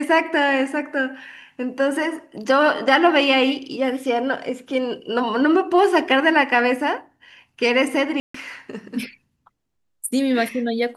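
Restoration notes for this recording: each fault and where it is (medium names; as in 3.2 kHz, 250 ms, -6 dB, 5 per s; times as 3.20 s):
8.20–8.34 s: dropout 144 ms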